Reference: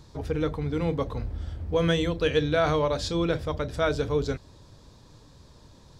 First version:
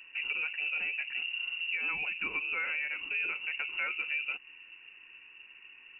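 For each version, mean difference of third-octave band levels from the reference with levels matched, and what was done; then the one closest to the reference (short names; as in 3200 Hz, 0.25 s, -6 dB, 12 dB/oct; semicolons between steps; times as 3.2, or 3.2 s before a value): 15.5 dB: compressor 4:1, threshold -31 dBFS, peak gain reduction 11.5 dB; notch comb 540 Hz; inverted band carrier 2800 Hz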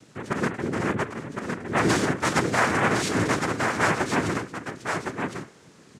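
10.0 dB: notches 60/120/180/240/300/360/420/480 Hz; noise vocoder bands 3; echo 1.061 s -5 dB; gain +1.5 dB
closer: second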